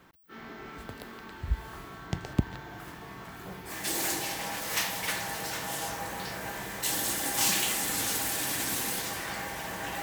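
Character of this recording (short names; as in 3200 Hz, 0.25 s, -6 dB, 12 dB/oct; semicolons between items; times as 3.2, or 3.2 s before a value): noise floor -46 dBFS; spectral tilt -2.0 dB/oct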